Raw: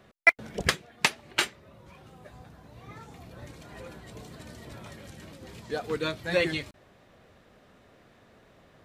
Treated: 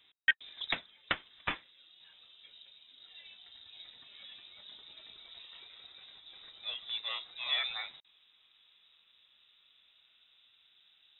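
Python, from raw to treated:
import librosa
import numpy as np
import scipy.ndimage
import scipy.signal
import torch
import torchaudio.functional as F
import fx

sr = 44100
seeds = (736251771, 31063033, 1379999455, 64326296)

y = fx.speed_glide(x, sr, from_pct=96, to_pct=62)
y = fx.freq_invert(y, sr, carrier_hz=3800)
y = F.gain(torch.from_numpy(y), -8.5).numpy()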